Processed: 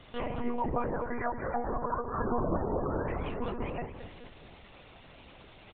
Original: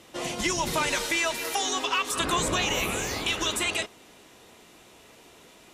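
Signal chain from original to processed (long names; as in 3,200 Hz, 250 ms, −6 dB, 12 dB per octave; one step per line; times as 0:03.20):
0:00.83–0:03.09: Butterworth low-pass 1,800 Hz 48 dB per octave
treble cut that deepens with the level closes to 830 Hz, closed at −26.5 dBFS
gate on every frequency bin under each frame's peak −25 dB strong
echo with shifted repeats 215 ms, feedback 55%, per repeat −110 Hz, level −10 dB
one-pitch LPC vocoder at 8 kHz 240 Hz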